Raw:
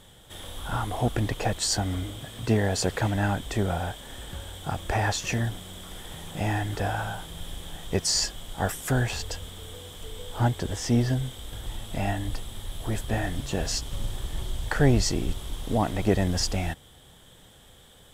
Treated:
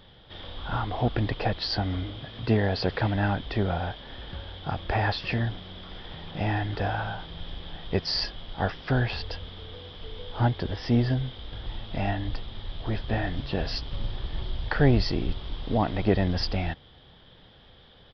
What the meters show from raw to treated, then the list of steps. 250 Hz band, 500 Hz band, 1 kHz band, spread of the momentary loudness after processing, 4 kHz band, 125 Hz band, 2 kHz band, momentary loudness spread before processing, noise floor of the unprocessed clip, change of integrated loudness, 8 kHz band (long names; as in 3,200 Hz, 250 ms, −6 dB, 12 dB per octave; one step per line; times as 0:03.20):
0.0 dB, 0.0 dB, 0.0 dB, 15 LU, −1.0 dB, 0.0 dB, 0.0 dB, 15 LU, −53 dBFS, −0.5 dB, below −25 dB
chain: downsampling to 11,025 Hz